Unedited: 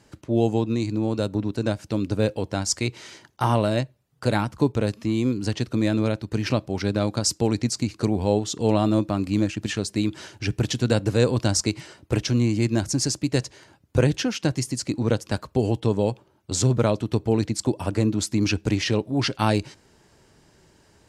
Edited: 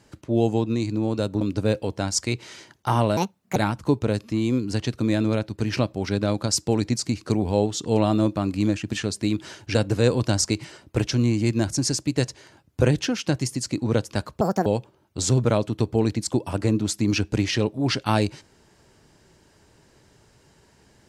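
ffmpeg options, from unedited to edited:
-filter_complex "[0:a]asplit=7[a][b][c][d][e][f][g];[a]atrim=end=1.412[h];[b]atrim=start=1.948:end=3.714[i];[c]atrim=start=3.71:end=4.29,asetpts=PTS-STARTPTS,asetrate=65709,aresample=44100,atrim=end_sample=17166,asetpts=PTS-STARTPTS[j];[d]atrim=start=4.286:end=10.482[k];[e]atrim=start=10.908:end=15.574[l];[f]atrim=start=15.57:end=15.99,asetpts=PTS-STARTPTS,asetrate=74088,aresample=44100[m];[g]atrim=start=15.986[n];[h][i]acrossfade=d=0.004:c1=hsin:c2=hsin[o];[o][j]acrossfade=d=0.004:c1=hsin:c2=hsin[p];[p][k]acrossfade=d=0.004:c1=hsin:c2=hsin[q];[q][l]acrossfade=d=0.004:c1=hsin:c2=hsin[r];[r][m]acrossfade=d=0.004:c1=hsin:c2=hsin[s];[s][n]acrossfade=d=0.004:c1=hsin:c2=hsin"

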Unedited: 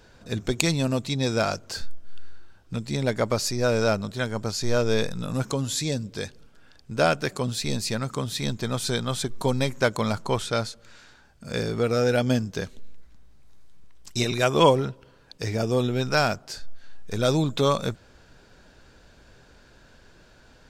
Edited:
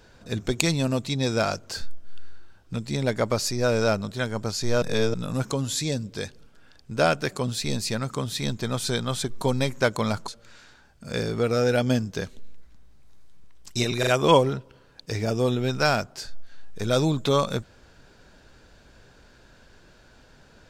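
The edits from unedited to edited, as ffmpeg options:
-filter_complex "[0:a]asplit=6[a][b][c][d][e][f];[a]atrim=end=4.822[g];[b]atrim=start=4.818:end=5.142,asetpts=PTS-STARTPTS,areverse[h];[c]atrim=start=5.138:end=10.282[i];[d]atrim=start=10.678:end=14.432[j];[e]atrim=start=14.388:end=14.432[k];[f]atrim=start=14.388[l];[g][h]acrossfade=d=0.004:c1=hsin:c2=hsin[m];[m][i]acrossfade=d=0.004:c1=hsin:c2=hsin[n];[n][j]acrossfade=d=0.004:c1=hsin:c2=hsin[o];[o][k]acrossfade=d=0.004:c1=hsin:c2=hsin[p];[p][l]acrossfade=d=0.004:c1=hsin:c2=hsin"

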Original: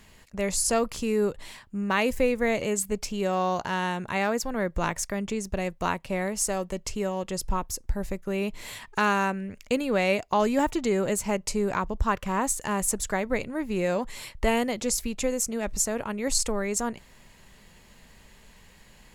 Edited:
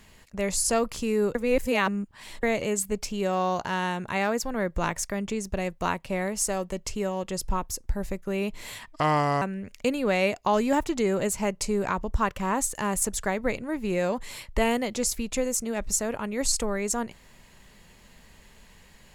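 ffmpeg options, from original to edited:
-filter_complex "[0:a]asplit=5[a][b][c][d][e];[a]atrim=end=1.352[f];[b]atrim=start=1.348:end=2.432,asetpts=PTS-STARTPTS,areverse[g];[c]atrim=start=2.428:end=8.914[h];[d]atrim=start=8.91:end=9.28,asetpts=PTS-STARTPTS,asetrate=32193,aresample=44100,atrim=end_sample=22352,asetpts=PTS-STARTPTS[i];[e]atrim=start=9.276[j];[f][g]acrossfade=d=0.004:c1=hsin:c2=hsin[k];[k][h]acrossfade=d=0.004:c1=hsin:c2=hsin[l];[l][i]acrossfade=d=0.004:c1=hsin:c2=hsin[m];[m][j]acrossfade=d=0.004:c1=hsin:c2=hsin"

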